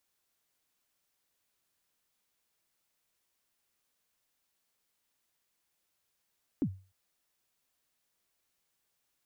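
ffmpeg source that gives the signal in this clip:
-f lavfi -i "aevalsrc='0.0708*pow(10,-3*t/0.35)*sin(2*PI*(330*0.069/log(95/330)*(exp(log(95/330)*min(t,0.069)/0.069)-1)+95*max(t-0.069,0)))':d=0.3:s=44100"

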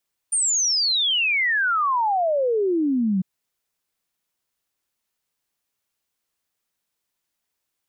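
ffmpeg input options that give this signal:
-f lavfi -i "aevalsrc='0.126*clip(min(t,2.9-t)/0.01,0,1)*sin(2*PI*9200*2.9/log(180/9200)*(exp(log(180/9200)*t/2.9)-1))':d=2.9:s=44100"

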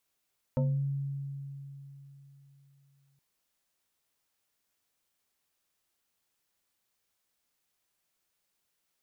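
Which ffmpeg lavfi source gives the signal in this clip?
-f lavfi -i "aevalsrc='0.0668*pow(10,-3*t/3.56)*sin(2*PI*139*t+1.2*pow(10,-3*t/0.43)*sin(2*PI*2.75*139*t))':d=2.62:s=44100"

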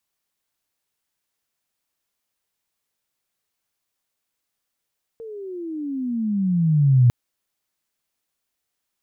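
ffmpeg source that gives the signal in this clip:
-f lavfi -i "aevalsrc='pow(10,(-10+23*(t/1.9-1))/20)*sin(2*PI*461*1.9/(-23.5*log(2)/12)*(exp(-23.5*log(2)/12*t/1.9)-1))':d=1.9:s=44100"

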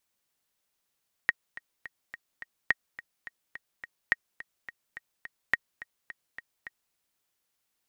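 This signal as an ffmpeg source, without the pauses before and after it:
-f lavfi -i "aevalsrc='pow(10,(-9-18*gte(mod(t,5*60/212),60/212))/20)*sin(2*PI*1880*mod(t,60/212))*exp(-6.91*mod(t,60/212)/0.03)':d=5.66:s=44100"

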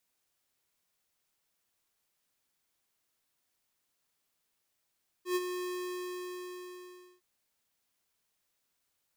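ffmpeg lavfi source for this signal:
-f lavfi -i "aevalsrc='0.0376*(2*lt(mod(361*t,1),0.5)-1)':d=1.96:s=44100,afade=t=in:d=0.107,afade=t=out:st=0.107:d=0.037:silence=0.398,afade=t=out:st=0.38:d=1.58"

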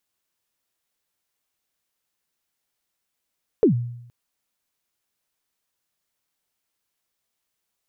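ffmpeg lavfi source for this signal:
-f lavfi -i "aevalsrc='0.316*pow(10,-3*t/0.78)*sin(2*PI*(490*0.108/log(120/490)*(exp(log(120/490)*min(t,0.108)/0.108)-1)+120*max(t-0.108,0)))':d=0.47:s=44100"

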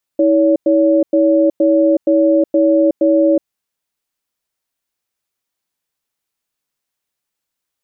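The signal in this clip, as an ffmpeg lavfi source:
-f lavfi -i "aevalsrc='0.266*(sin(2*PI*322*t)+sin(2*PI*565*t))*clip(min(mod(t,0.47),0.37-mod(t,0.47))/0.005,0,1)':d=3.29:s=44100"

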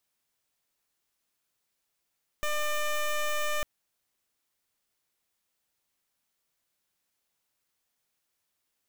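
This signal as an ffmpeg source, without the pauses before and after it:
-f lavfi -i "aevalsrc='0.0376*(2*lt(mod(599*t,1),0.13)-1)':d=1.2:s=44100"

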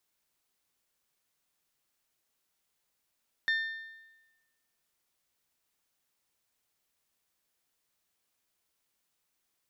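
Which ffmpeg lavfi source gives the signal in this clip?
-f lavfi -i "aevalsrc='0.0631*pow(10,-3*t/1.12)*sin(2*PI*1800*t)+0.0224*pow(10,-3*t/0.91)*sin(2*PI*3600*t)+0.00794*pow(10,-3*t/0.861)*sin(2*PI*4320*t)+0.00282*pow(10,-3*t/0.806)*sin(2*PI*5400*t)+0.001*pow(10,-3*t/0.739)*sin(2*PI*7200*t)':d=1.55:s=44100"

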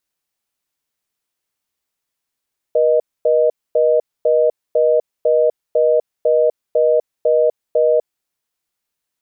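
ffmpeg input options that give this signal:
-f lavfi -i "aevalsrc='0.211*(sin(2*PI*480*t)+sin(2*PI*620*t))*clip(min(mod(t,0.5),0.25-mod(t,0.5))/0.005,0,1)':d=5.48:s=44100"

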